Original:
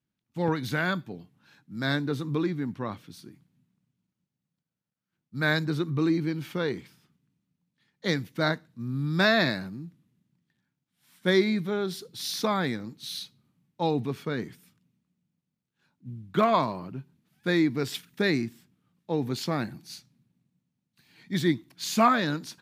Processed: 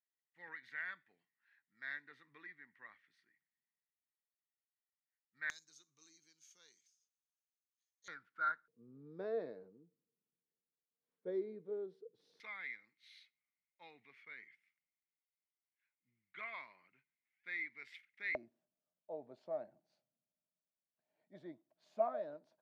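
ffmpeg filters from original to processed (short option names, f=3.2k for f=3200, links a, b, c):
-af "asetnsamples=n=441:p=0,asendcmd='5.5 bandpass f 6400;8.08 bandpass f 1400;8.68 bandpass f 460;12.4 bandpass f 2100;18.35 bandpass f 620',bandpass=f=1.9k:t=q:w=15:csg=0"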